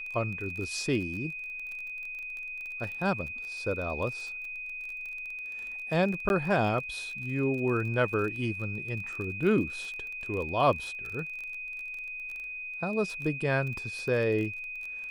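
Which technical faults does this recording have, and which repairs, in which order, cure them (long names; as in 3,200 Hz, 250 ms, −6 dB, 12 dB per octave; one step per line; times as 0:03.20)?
surface crackle 29 per second −36 dBFS
whistle 2,500 Hz −36 dBFS
0:06.29–0:06.30: drop-out 11 ms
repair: click removal
notch filter 2,500 Hz, Q 30
repair the gap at 0:06.29, 11 ms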